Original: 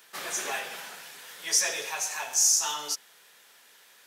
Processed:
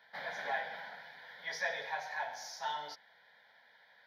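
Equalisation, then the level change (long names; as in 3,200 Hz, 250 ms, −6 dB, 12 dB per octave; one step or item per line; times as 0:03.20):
high-frequency loss of the air 410 metres
low-shelf EQ 350 Hz −5 dB
phaser with its sweep stopped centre 1,800 Hz, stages 8
+2.5 dB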